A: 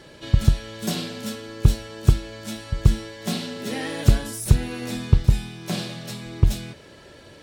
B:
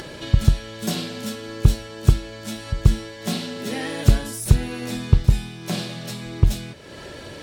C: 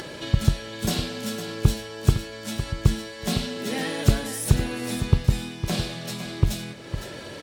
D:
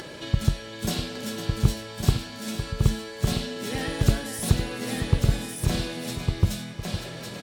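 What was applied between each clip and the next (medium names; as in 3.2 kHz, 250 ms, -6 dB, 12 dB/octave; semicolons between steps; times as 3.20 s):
upward compressor, threshold -29 dBFS; trim +1 dB
bass shelf 79 Hz -9.5 dB; delay 508 ms -10.5 dB; short-mantissa float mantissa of 6-bit
delay 1155 ms -4 dB; trim -2.5 dB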